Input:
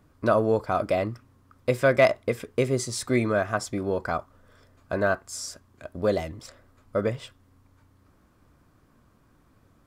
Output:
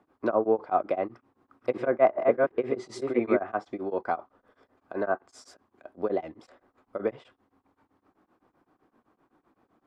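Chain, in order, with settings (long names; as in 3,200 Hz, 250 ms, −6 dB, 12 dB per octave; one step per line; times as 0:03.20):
0:01.04–0:03.37: delay that plays each chunk backwards 369 ms, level −1.5 dB
three-way crossover with the lows and the highs turned down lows −17 dB, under 370 Hz, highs −12 dB, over 3,700 Hz
treble cut that deepens with the level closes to 1,500 Hz, closed at −19.5 dBFS
hollow resonant body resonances 220/320/760 Hz, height 11 dB, ringing for 20 ms
tremolo along a rectified sine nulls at 7.8 Hz
level −4 dB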